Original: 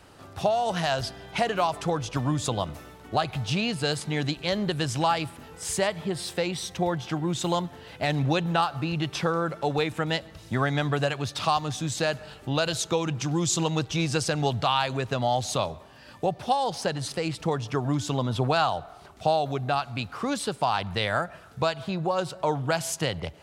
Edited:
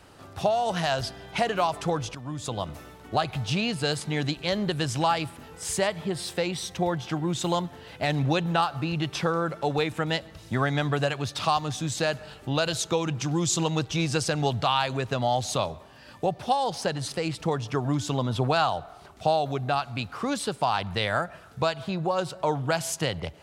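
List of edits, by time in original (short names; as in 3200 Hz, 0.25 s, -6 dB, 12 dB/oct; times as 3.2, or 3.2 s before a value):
2.15–2.81 fade in, from -15.5 dB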